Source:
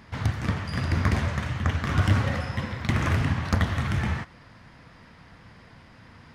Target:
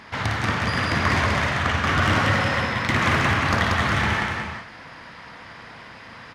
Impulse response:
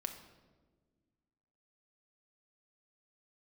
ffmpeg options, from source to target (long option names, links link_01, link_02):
-filter_complex "[0:a]aecho=1:1:56|185|364|401:0.473|0.708|0.335|0.237,asplit=2[link_01][link_02];[link_02]highpass=frequency=720:poles=1,volume=16dB,asoftclip=type=tanh:threshold=-9dB[link_03];[link_01][link_03]amix=inputs=2:normalize=0,lowpass=frequency=4600:poles=1,volume=-6dB"